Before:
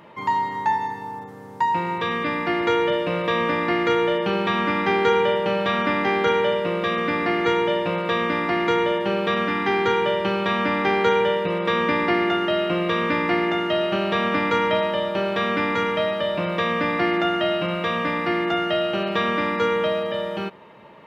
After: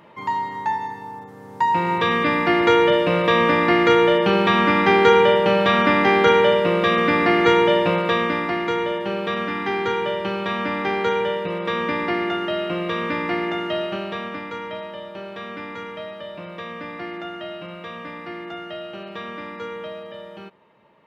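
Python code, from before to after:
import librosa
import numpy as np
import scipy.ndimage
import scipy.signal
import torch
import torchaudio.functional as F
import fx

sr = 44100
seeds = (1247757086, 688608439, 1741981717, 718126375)

y = fx.gain(x, sr, db=fx.line((1.28, -2.0), (1.95, 5.0), (7.88, 5.0), (8.65, -2.5), (13.78, -2.5), (14.47, -11.0)))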